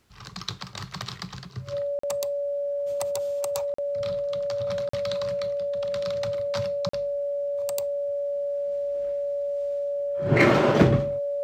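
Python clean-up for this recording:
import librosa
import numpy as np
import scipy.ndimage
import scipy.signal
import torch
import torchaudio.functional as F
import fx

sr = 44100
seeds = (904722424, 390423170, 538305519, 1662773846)

y = fx.fix_declip(x, sr, threshold_db=-8.0)
y = fx.notch(y, sr, hz=570.0, q=30.0)
y = fx.fix_interpolate(y, sr, at_s=(1.99, 3.74, 4.89, 6.89), length_ms=44.0)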